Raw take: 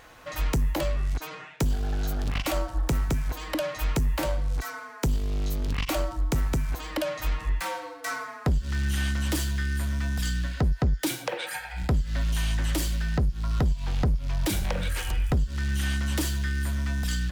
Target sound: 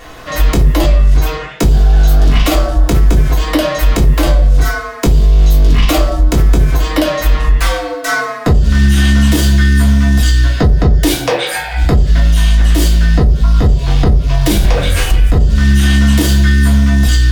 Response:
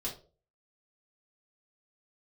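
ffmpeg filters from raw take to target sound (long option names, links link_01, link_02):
-filter_complex "[1:a]atrim=start_sample=2205[link_01];[0:a][link_01]afir=irnorm=-1:irlink=0,alimiter=level_in=16dB:limit=-1dB:release=50:level=0:latency=1,volume=-1dB"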